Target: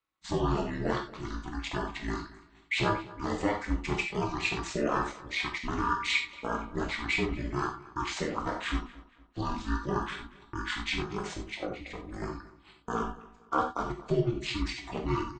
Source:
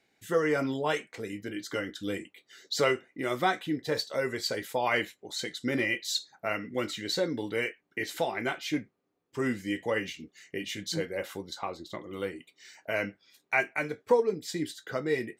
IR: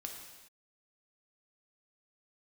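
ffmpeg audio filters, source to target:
-filter_complex "[0:a]agate=range=-18dB:threshold=-49dB:ratio=16:detection=peak,highshelf=f=2.4k:g=8.5,asplit=2[a][b];[b]alimiter=limit=-19.5dB:level=0:latency=1:release=207,volume=-2dB[c];[a][c]amix=inputs=2:normalize=0,asetrate=24046,aresample=44100,atempo=1.83401,aeval=exprs='val(0)*sin(2*PI*110*n/s)':c=same,asplit=2[d][e];[e]adelay=232,lowpass=f=4.3k:p=1,volume=-19dB,asplit=2[f][g];[g]adelay=232,lowpass=f=4.3k:p=1,volume=0.37,asplit=2[h][i];[i]adelay=232,lowpass=f=4.3k:p=1,volume=0.37[j];[d][f][h][j]amix=inputs=4:normalize=0[k];[1:a]atrim=start_sample=2205,atrim=end_sample=4410[l];[k][l]afir=irnorm=-1:irlink=0"

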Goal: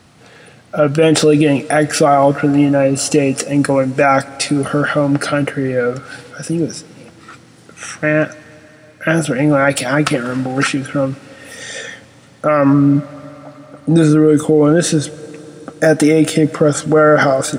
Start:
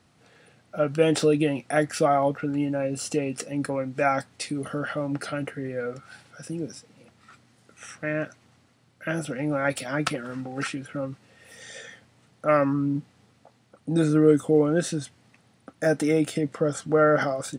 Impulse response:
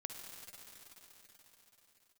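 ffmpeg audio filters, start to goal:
-filter_complex "[0:a]asplit=2[a][b];[1:a]atrim=start_sample=2205[c];[b][c]afir=irnorm=-1:irlink=0,volume=-14dB[d];[a][d]amix=inputs=2:normalize=0,alimiter=level_in=14.5dB:limit=-1dB:release=50:level=0:latency=1,volume=-1dB"

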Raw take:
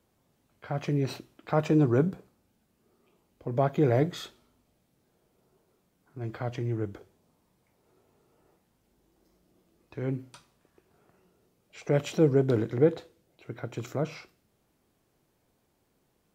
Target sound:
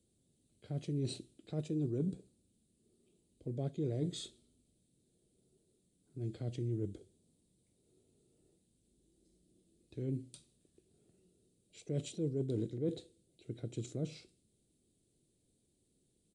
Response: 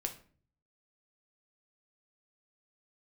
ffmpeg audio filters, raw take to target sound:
-af "firequalizer=gain_entry='entry(350,0);entry(970,-24);entry(3800,2);entry(5500,-5);entry(8100,8)':delay=0.05:min_phase=1,areverse,acompressor=threshold=-29dB:ratio=6,areverse,aresample=22050,aresample=44100,volume=-3.5dB"

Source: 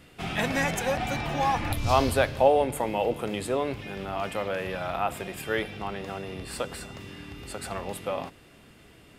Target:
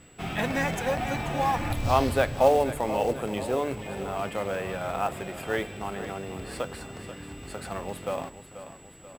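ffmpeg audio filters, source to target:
-af "aeval=exprs='val(0)+0.00282*sin(2*PI*7800*n/s)':c=same,acrusher=bits=4:mode=log:mix=0:aa=0.000001,highshelf=f=3.3k:g=-7,aecho=1:1:485|970|1455|1940|2425:0.237|0.123|0.0641|0.0333|0.0173"

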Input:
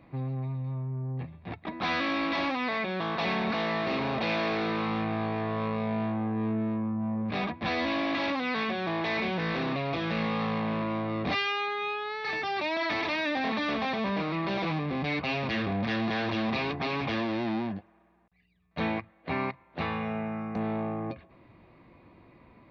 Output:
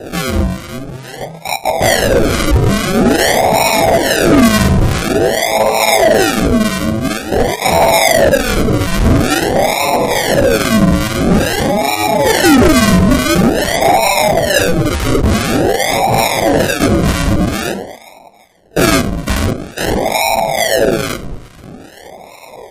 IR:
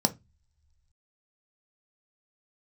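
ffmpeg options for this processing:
-filter_complex "[0:a]lowshelf=f=430:t=q:w=3:g=-14,bandreject=f=3.4k:w=5.2,asplit=4[a][b][c][d];[b]adelay=233,afreqshift=30,volume=-18.5dB[e];[c]adelay=466,afreqshift=60,volume=-28.7dB[f];[d]adelay=699,afreqshift=90,volume=-38.8dB[g];[a][e][f][g]amix=inputs=4:normalize=0,asplit=2[h][i];[1:a]atrim=start_sample=2205,afade=t=out:st=0.42:d=0.01,atrim=end_sample=18963[j];[i][j]afir=irnorm=-1:irlink=0,volume=-10dB[k];[h][k]amix=inputs=2:normalize=0,flanger=delay=16:depth=5.1:speed=2,bass=f=250:g=-6,treble=f=4k:g=15,aphaser=in_gain=1:out_gain=1:delay=2.5:decay=0.54:speed=0.16:type=sinusoidal,acrusher=samples=40:mix=1:aa=0.000001:lfo=1:lforange=24:lforate=0.48,acrossover=split=1000[l][m];[l]aeval=exprs='val(0)*(1-0.7/2+0.7/2*cos(2*PI*2.3*n/s))':c=same[n];[m]aeval=exprs='val(0)*(1-0.7/2-0.7/2*cos(2*PI*2.3*n/s))':c=same[o];[n][o]amix=inputs=2:normalize=0,asoftclip=type=hard:threshold=-22.5dB,alimiter=level_in=27dB:limit=-1dB:release=50:level=0:latency=1,volume=-3.5dB" -ar 44100 -c:a libmp3lame -b:a 56k

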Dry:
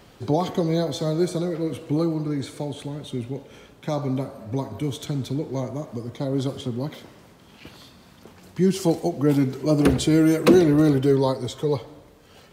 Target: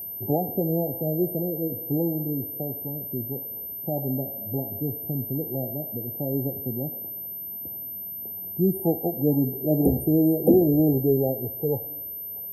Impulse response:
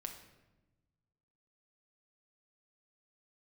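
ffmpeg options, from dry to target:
-af "aeval=exprs='val(0)+0.0316*sin(2*PI*13000*n/s)':c=same,afftfilt=real='re*(1-between(b*sr/4096,860,8800))':imag='im*(1-between(b*sr/4096,860,8800))':win_size=4096:overlap=0.75,volume=-2.5dB"

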